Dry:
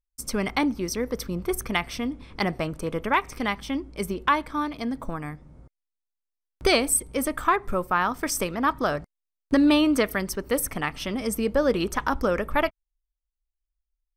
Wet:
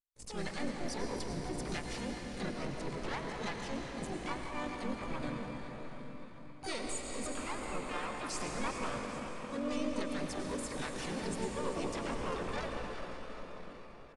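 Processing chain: partial rectifier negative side -7 dB; gate -39 dBFS, range -17 dB; compression 12:1, threshold -30 dBFS, peak gain reduction 14 dB; transient shaper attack -10 dB, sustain -6 dB; echo whose repeats swap between lows and highs 198 ms, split 1.4 kHz, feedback 71%, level -9 dB; reverberation RT60 5.1 s, pre-delay 85 ms, DRR 1 dB; harmony voices -3 st 0 dB, +12 st -2 dB; resampled via 22.05 kHz; trim -7 dB

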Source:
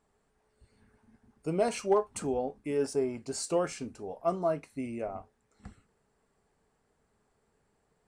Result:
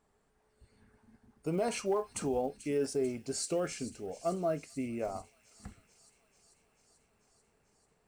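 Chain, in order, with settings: block-companded coder 7-bit; 2.47–4.90 s: peaking EQ 970 Hz -13 dB 0.46 oct; peak limiter -23 dBFS, peak gain reduction 7.5 dB; feedback echo behind a high-pass 440 ms, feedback 73%, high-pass 3.1 kHz, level -13.5 dB

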